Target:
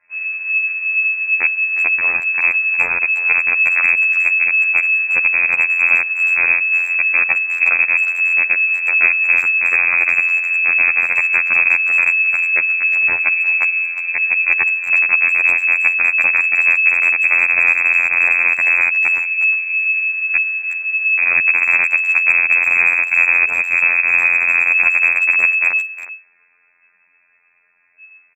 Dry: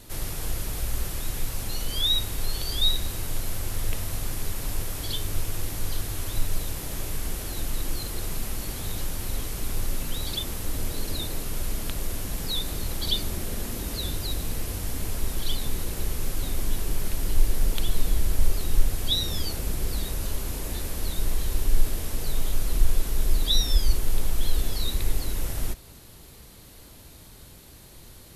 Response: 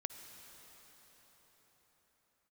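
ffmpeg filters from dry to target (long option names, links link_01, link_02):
-filter_complex "[0:a]afwtdn=0.0501,equalizer=frequency=860:width_type=o:width=1.4:gain=11,aecho=1:1:5.1:0.9,adynamicequalizer=threshold=0.00398:dfrequency=290:dqfactor=1.2:tfrequency=290:tqfactor=1.2:attack=5:release=100:ratio=0.375:range=1.5:mode=cutabove:tftype=bell,dynaudnorm=framelen=240:gausssize=17:maxgain=7dB,flanger=delay=5.2:depth=2.1:regen=-11:speed=1.4:shape=sinusoidal,aeval=exprs='(mod(5.01*val(0)+1,2)-1)/5.01':channel_layout=same,afftfilt=real='hypot(re,im)*cos(PI*b)':imag='0':win_size=2048:overlap=0.75,lowpass=frequency=2200:width_type=q:width=0.5098,lowpass=frequency=2200:width_type=q:width=0.6013,lowpass=frequency=2200:width_type=q:width=0.9,lowpass=frequency=2200:width_type=q:width=2.563,afreqshift=-2600,asplit=2[link_01][link_02];[link_02]adelay=360,highpass=300,lowpass=3400,asoftclip=type=hard:threshold=-19dB,volume=-13dB[link_03];[link_01][link_03]amix=inputs=2:normalize=0,volume=7.5dB"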